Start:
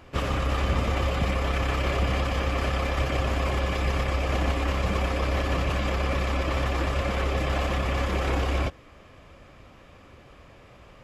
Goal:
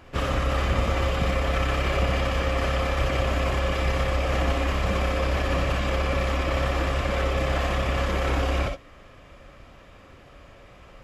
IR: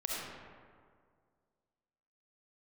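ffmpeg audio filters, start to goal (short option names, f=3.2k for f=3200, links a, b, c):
-filter_complex "[0:a]equalizer=f=1.6k:t=o:w=0.35:g=2.5[a];[1:a]atrim=start_sample=2205,atrim=end_sample=3087[b];[a][b]afir=irnorm=-1:irlink=0,volume=1.5dB"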